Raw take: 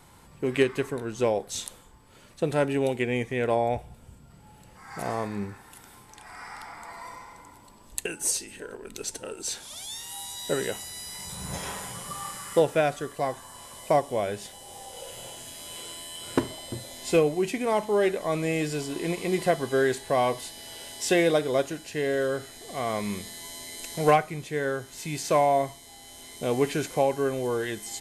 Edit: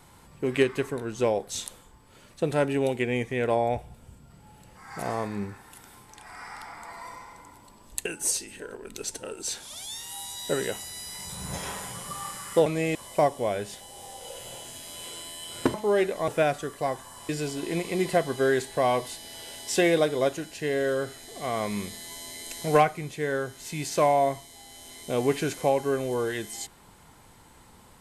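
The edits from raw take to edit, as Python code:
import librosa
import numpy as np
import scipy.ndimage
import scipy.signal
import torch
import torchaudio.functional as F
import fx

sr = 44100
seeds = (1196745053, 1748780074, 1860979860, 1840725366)

y = fx.edit(x, sr, fx.swap(start_s=12.66, length_s=1.01, other_s=18.33, other_length_s=0.29),
    fx.cut(start_s=16.46, length_s=1.33), tone=tone)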